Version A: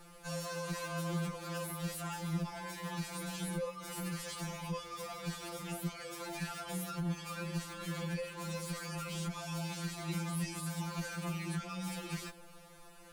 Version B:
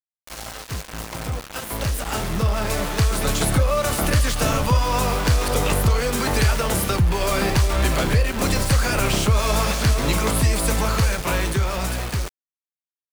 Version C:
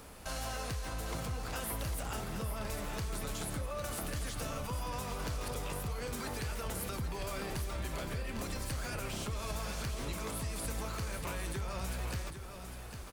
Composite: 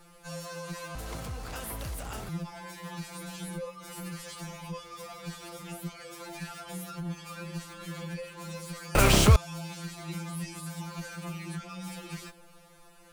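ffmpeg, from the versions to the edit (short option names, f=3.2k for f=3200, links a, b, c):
-filter_complex "[0:a]asplit=3[a][b][c];[a]atrim=end=0.952[d];[2:a]atrim=start=0.948:end=2.292[e];[b]atrim=start=2.288:end=8.952[f];[1:a]atrim=start=8.948:end=9.362[g];[c]atrim=start=9.358[h];[d][e]acrossfade=d=0.004:c1=hsin:c2=hsin[i];[i][f]acrossfade=d=0.004:c1=hsin:c2=hsin[j];[j][g]acrossfade=d=0.004:c1=hsin:c2=hsin[k];[k][h]acrossfade=d=0.004:c1=hsin:c2=hsin"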